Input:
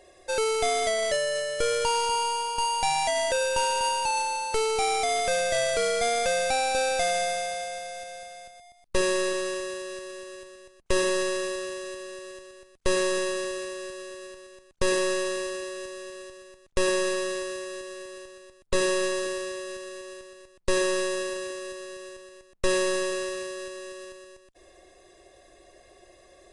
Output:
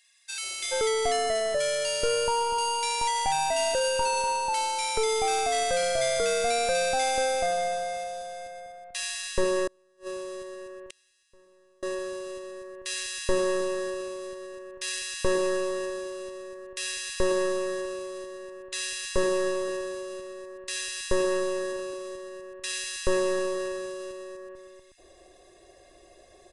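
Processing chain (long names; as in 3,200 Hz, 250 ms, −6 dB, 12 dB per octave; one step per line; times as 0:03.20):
multiband delay without the direct sound highs, lows 430 ms, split 1,800 Hz
0:09.67–0:11.83: gate with flip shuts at −24 dBFS, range −34 dB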